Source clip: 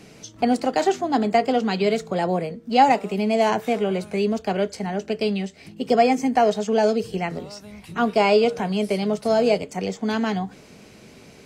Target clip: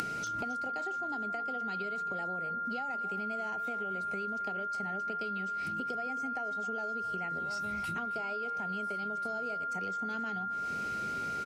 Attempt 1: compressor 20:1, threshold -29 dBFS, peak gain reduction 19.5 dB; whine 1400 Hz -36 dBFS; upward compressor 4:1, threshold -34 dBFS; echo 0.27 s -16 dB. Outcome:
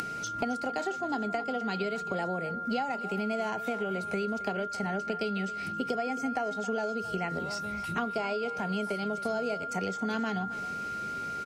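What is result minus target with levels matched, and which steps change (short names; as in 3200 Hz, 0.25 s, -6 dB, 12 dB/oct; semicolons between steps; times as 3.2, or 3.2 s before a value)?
compressor: peak gain reduction -10.5 dB
change: compressor 20:1, threshold -40 dBFS, peak gain reduction 30 dB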